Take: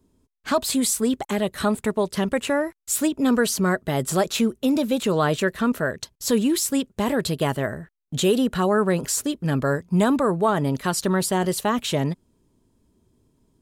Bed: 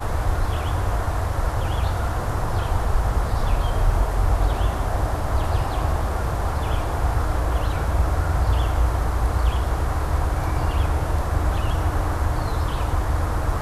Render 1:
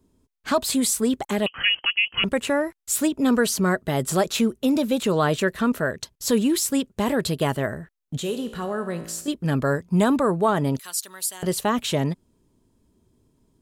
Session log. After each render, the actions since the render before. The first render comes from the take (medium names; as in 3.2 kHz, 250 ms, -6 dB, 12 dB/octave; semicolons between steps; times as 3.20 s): 1.46–2.24 s: frequency inversion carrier 3.1 kHz; 8.17–9.28 s: feedback comb 56 Hz, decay 0.91 s, mix 70%; 10.79–11.43 s: differentiator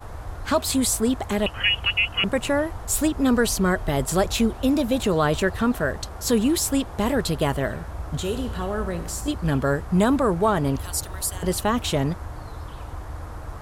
add bed -12.5 dB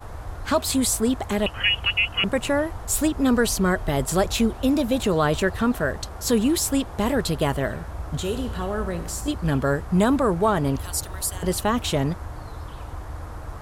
no audible change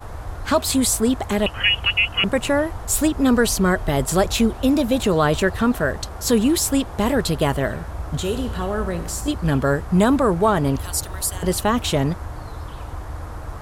trim +3 dB